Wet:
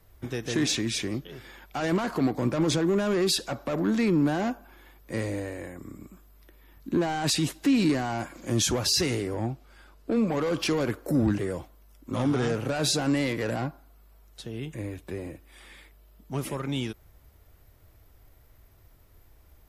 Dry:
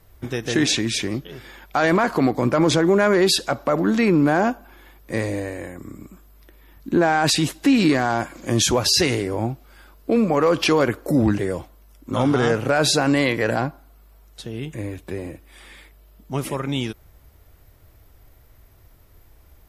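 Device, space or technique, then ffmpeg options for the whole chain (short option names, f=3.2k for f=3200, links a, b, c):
one-band saturation: -filter_complex "[0:a]asettb=1/sr,asplit=3[a][b][c];[a]atrim=end=9.344[d];[b]atrim=start=9.34:end=10.27,asetpts=PTS-STARTPTS,afade=t=in:d=0.004:c=qsin,afade=t=out:st=0.926:d=0.004:c=qsin,lowpass=10k[e];[c]atrim=start=10.266[f];[d][e]acrossfade=d=0.004:c1=hsin:c2=qsin[g];[g][f]acrossfade=d=0.004:c1=qsin:c2=hsin,acrossover=split=340|4600[h][i][j];[i]asoftclip=type=tanh:threshold=-23dB[k];[h][k][j]amix=inputs=3:normalize=0,volume=-5dB"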